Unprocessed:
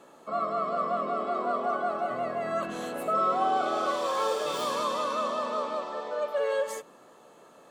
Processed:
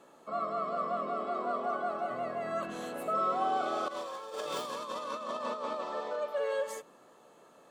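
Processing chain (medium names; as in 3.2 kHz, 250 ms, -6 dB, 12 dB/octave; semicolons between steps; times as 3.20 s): 3.88–6.16 s: compressor with a negative ratio -32 dBFS, ratio -0.5; trim -4.5 dB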